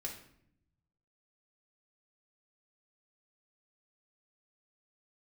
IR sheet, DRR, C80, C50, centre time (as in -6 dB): -2.0 dB, 10.5 dB, 7.0 dB, 23 ms